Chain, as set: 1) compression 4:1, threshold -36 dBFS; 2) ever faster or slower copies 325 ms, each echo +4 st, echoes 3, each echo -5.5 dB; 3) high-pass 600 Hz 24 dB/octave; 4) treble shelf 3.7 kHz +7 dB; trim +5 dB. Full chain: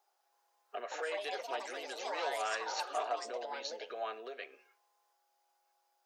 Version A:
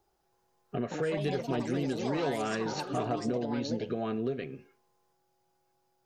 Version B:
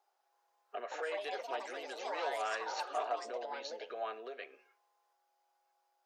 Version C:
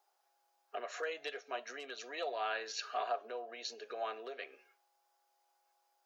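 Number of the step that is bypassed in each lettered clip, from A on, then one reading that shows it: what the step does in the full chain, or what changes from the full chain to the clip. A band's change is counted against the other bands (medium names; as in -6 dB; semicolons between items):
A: 3, 250 Hz band +25.0 dB; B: 4, 8 kHz band -5.0 dB; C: 2, momentary loudness spread change -2 LU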